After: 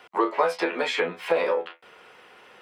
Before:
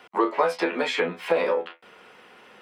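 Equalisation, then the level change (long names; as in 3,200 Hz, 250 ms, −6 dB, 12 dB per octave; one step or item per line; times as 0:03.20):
parametric band 220 Hz −7 dB 0.74 octaves
0.0 dB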